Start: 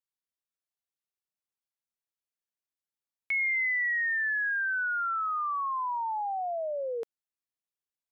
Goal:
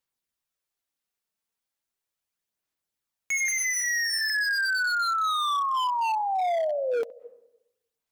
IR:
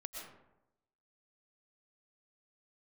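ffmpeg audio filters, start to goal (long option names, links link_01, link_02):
-filter_complex "[0:a]aphaser=in_gain=1:out_gain=1:delay=4.5:decay=0.31:speed=0.37:type=sinusoidal,asettb=1/sr,asplit=3[link_01][link_02][link_03];[link_01]atrim=end=3.484[link_04];[link_02]atrim=start=3.48:end=4.3,asetpts=PTS-STARTPTS,afade=type=in:duration=0.004:curve=qsin,afade=type=out:start_time=0.816:duration=0.004:curve=qsin,highpass=frequency=300:width=0.5412,highpass=frequency=300:width=1.3066,equalizer=frequency=310:width_type=q:width=4:gain=-8,equalizer=frequency=450:width_type=q:width=4:gain=5,equalizer=frequency=670:width_type=q:width=4:gain=-4,equalizer=frequency=970:width_type=q:width=4:gain=5,equalizer=frequency=1500:width_type=q:width=4:gain=8,equalizer=frequency=2300:width_type=q:width=4:gain=3,lowpass=frequency=2800:width=0.5412,lowpass=frequency=2800:width=1.3066[link_05];[link_03]atrim=start=4.296[link_06];[link_04][link_05]acrossfade=duration=0.004:curve1=hsin:curve2=qsin[link_07];[link_07][link_06]acrossfade=duration=0.004:curve1=qsin:curve2=hsin,asplit=2[link_08][link_09];[1:a]atrim=start_sample=2205,lowpass=2300,adelay=69[link_10];[link_09][link_10]afir=irnorm=-1:irlink=0,volume=-14.5dB[link_11];[link_08][link_11]amix=inputs=2:normalize=0,aeval=exprs='0.0376*(abs(mod(val(0)/0.0376+3,4)-2)-1)':channel_layout=same,volume=6.5dB"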